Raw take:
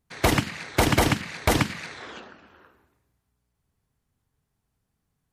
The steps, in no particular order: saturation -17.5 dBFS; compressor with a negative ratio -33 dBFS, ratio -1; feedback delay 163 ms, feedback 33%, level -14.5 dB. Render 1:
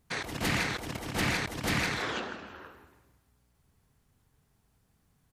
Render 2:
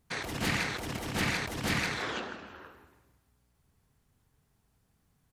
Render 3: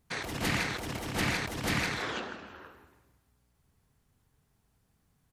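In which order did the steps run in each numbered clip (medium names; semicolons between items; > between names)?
feedback delay > compressor with a negative ratio > saturation; saturation > feedback delay > compressor with a negative ratio; feedback delay > saturation > compressor with a negative ratio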